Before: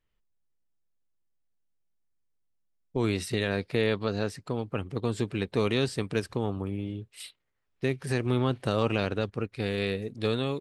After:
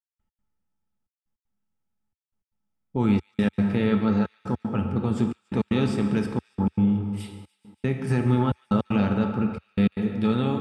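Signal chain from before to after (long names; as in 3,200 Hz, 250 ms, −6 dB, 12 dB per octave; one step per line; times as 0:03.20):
high-shelf EQ 6,000 Hz −6.5 dB
notch filter 4,100 Hz, Q 6.5
hollow resonant body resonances 210/860/1,300 Hz, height 14 dB, ringing for 65 ms
in parallel at −1 dB: brickwall limiter −18 dBFS, peak gain reduction 9.5 dB
on the sum: dense smooth reverb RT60 2.4 s, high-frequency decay 0.5×, DRR 3.5 dB
gate pattern "..x.xxxxxxx" 155 BPM −60 dB
parametric band 78 Hz +6.5 dB 1.1 octaves
on a send: delay with a high-pass on its return 144 ms, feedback 75%, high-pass 2,100 Hz, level −23 dB
on the sum: level −5.5 dB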